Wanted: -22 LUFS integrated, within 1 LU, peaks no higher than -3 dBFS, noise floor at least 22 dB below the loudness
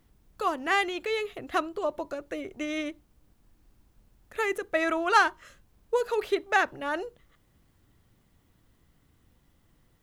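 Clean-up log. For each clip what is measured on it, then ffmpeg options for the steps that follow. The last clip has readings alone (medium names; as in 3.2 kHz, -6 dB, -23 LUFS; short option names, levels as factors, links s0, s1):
loudness -28.5 LUFS; peak level -8.5 dBFS; loudness target -22.0 LUFS
-> -af "volume=2.11,alimiter=limit=0.708:level=0:latency=1"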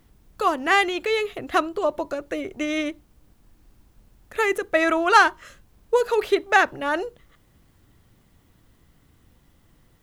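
loudness -22.0 LUFS; peak level -3.0 dBFS; noise floor -60 dBFS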